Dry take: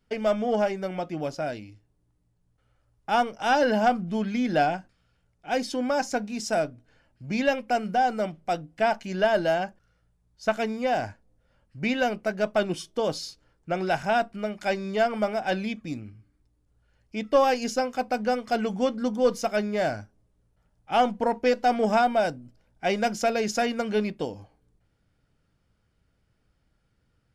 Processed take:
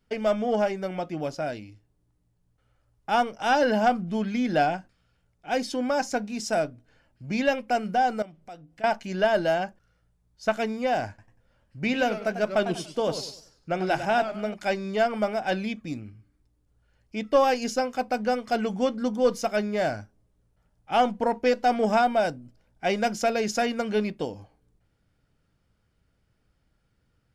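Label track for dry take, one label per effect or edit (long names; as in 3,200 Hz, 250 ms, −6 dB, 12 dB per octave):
8.220000	8.840000	downward compressor 2 to 1, threshold −52 dBFS
11.080000	14.540000	feedback echo with a swinging delay time 97 ms, feedback 34%, depth 167 cents, level −10 dB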